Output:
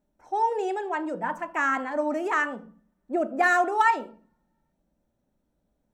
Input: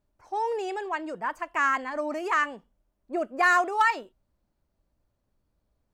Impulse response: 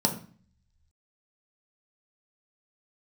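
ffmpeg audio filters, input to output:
-filter_complex "[0:a]asplit=2[a][b];[1:a]atrim=start_sample=2205,highshelf=f=3.9k:g=-6[c];[b][c]afir=irnorm=-1:irlink=0,volume=-12dB[d];[a][d]amix=inputs=2:normalize=0,volume=-2.5dB"

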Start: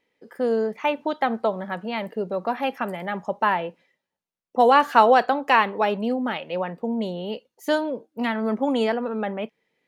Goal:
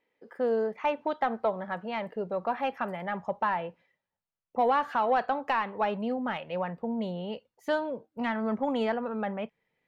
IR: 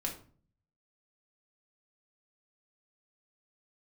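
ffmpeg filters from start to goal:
-filter_complex "[0:a]asubboost=boost=6.5:cutoff=120,alimiter=limit=-12dB:level=0:latency=1:release=291,asplit=2[a][b];[b]highpass=f=720:p=1,volume=7dB,asoftclip=type=tanh:threshold=-12dB[c];[a][c]amix=inputs=2:normalize=0,lowpass=f=1.2k:p=1,volume=-6dB,volume=-2.5dB"

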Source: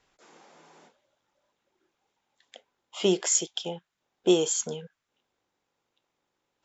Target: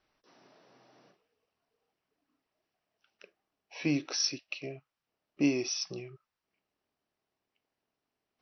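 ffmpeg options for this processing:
-af "asetrate=34839,aresample=44100,volume=-6.5dB"

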